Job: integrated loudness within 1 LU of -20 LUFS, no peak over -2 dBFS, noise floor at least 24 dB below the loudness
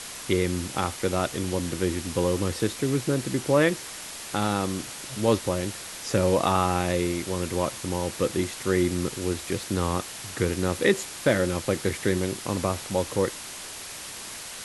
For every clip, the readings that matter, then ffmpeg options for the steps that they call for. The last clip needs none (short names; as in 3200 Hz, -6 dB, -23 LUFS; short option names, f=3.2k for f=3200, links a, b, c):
noise floor -39 dBFS; noise floor target -51 dBFS; loudness -27.0 LUFS; peak -7.5 dBFS; loudness target -20.0 LUFS
-> -af "afftdn=nr=12:nf=-39"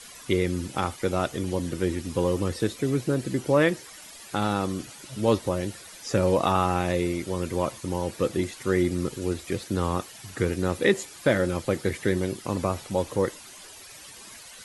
noise floor -46 dBFS; noise floor target -51 dBFS
-> -af "afftdn=nr=6:nf=-46"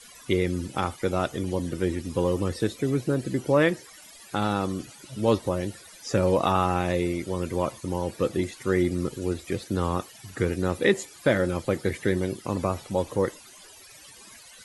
noise floor -49 dBFS; noise floor target -51 dBFS
-> -af "afftdn=nr=6:nf=-49"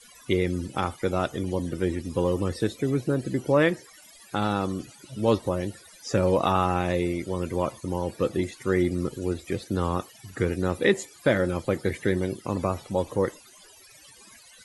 noise floor -52 dBFS; loudness -27.0 LUFS; peak -8.0 dBFS; loudness target -20.0 LUFS
-> -af "volume=7dB,alimiter=limit=-2dB:level=0:latency=1"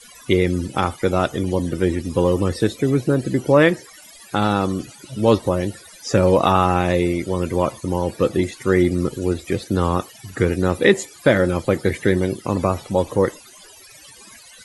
loudness -20.0 LUFS; peak -2.0 dBFS; noise floor -45 dBFS